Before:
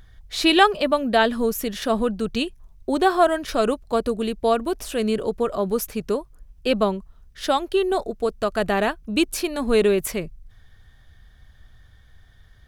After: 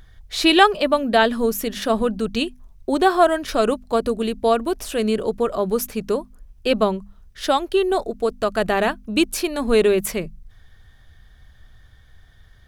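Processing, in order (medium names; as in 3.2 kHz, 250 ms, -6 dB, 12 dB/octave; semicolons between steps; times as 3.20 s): hum notches 50/100/150/200/250 Hz; trim +2 dB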